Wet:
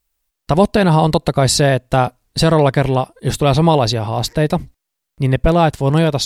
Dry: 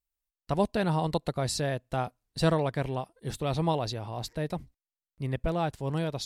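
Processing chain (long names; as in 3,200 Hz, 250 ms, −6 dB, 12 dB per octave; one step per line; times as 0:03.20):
boost into a limiter +17.5 dB
level −1 dB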